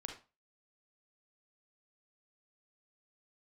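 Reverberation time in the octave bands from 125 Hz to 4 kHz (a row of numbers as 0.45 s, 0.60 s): 0.30 s, 0.30 s, 0.30 s, 0.30 s, 0.25 s, 0.25 s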